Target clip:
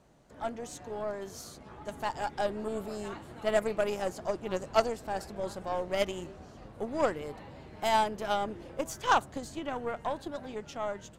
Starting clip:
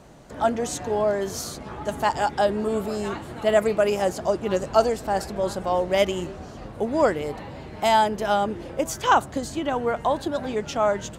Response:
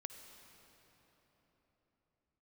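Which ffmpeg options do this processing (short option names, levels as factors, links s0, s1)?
-af "dynaudnorm=f=650:g=7:m=2.37,aeval=exprs='0.841*(cos(1*acos(clip(val(0)/0.841,-1,1)))-cos(1*PI/2))+0.15*(cos(3*acos(clip(val(0)/0.841,-1,1)))-cos(3*PI/2))+0.0211*(cos(8*acos(clip(val(0)/0.841,-1,1)))-cos(8*PI/2))':c=same,volume=0.422"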